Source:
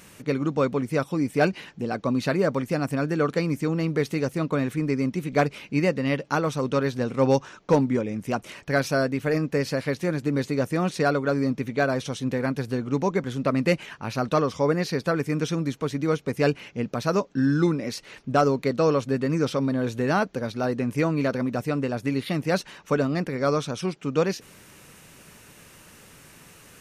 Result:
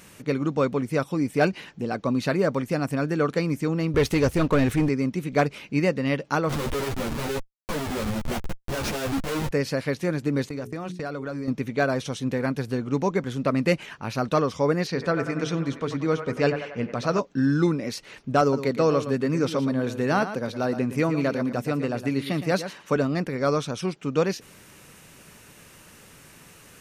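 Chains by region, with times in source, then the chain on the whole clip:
0:03.94–0:04.89: leveller curve on the samples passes 2 + low shelf with overshoot 100 Hz +13.5 dB, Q 1.5
0:06.49–0:09.51: comparator with hysteresis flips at −32 dBFS + string-ensemble chorus
0:10.49–0:11.48: noise gate −32 dBFS, range −19 dB + mains-hum notches 60/120/180/240/300/360/420 Hz + downward compressor, threshold −28 dBFS
0:14.87–0:17.19: low-pass filter 6,800 Hz + mains-hum notches 50/100/150/200/250/300/350/400/450 Hz + delay with a band-pass on its return 93 ms, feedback 57%, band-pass 1,100 Hz, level −6 dB
0:18.41–0:22.96: high-pass filter 100 Hz + single-tap delay 115 ms −11 dB
whole clip: no processing

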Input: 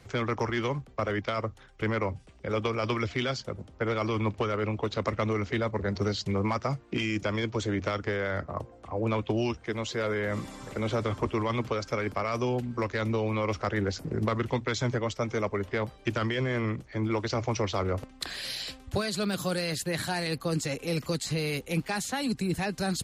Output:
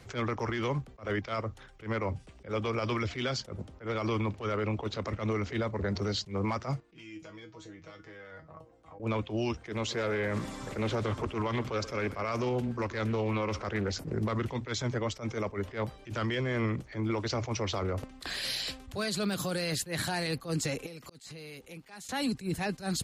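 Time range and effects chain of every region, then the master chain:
0:06.80–0:09.00: downward compressor 5 to 1, threshold −38 dBFS + tuned comb filter 160 Hz, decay 0.18 s, mix 90%
0:09.71–0:13.92: single-tap delay 126 ms −19 dB + highs frequency-modulated by the lows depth 0.31 ms
0:20.86–0:22.09: low-shelf EQ 130 Hz −8 dB + volume swells 398 ms + downward compressor 12 to 1, threshold −44 dBFS
whole clip: brickwall limiter −25 dBFS; level that may rise only so fast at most 210 dB per second; level +2 dB

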